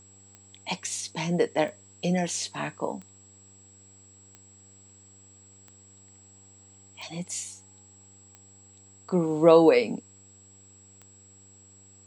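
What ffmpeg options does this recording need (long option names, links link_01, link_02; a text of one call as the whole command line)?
ffmpeg -i in.wav -af "adeclick=threshold=4,bandreject=frequency=97.6:width_type=h:width=4,bandreject=frequency=195.2:width_type=h:width=4,bandreject=frequency=292.8:width_type=h:width=4,bandreject=frequency=390.4:width_type=h:width=4,bandreject=frequency=488:width_type=h:width=4,bandreject=frequency=7700:width=30" out.wav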